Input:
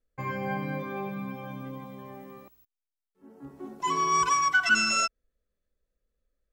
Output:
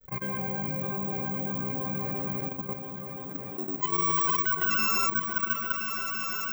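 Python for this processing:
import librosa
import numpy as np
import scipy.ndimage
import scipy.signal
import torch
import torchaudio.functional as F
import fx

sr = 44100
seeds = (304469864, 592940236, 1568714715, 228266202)

p1 = fx.granulator(x, sr, seeds[0], grain_ms=100.0, per_s=20.0, spray_ms=100.0, spread_st=0)
p2 = p1 + fx.echo_opening(p1, sr, ms=341, hz=400, octaves=2, feedback_pct=70, wet_db=-3, dry=0)
p3 = (np.kron(scipy.signal.resample_poly(p2, 1, 2), np.eye(2)[0]) * 2)[:len(p2)]
p4 = fx.level_steps(p3, sr, step_db=13)
p5 = fx.peak_eq(p4, sr, hz=170.0, db=9.0, octaves=0.25)
y = fx.env_flatten(p5, sr, amount_pct=50)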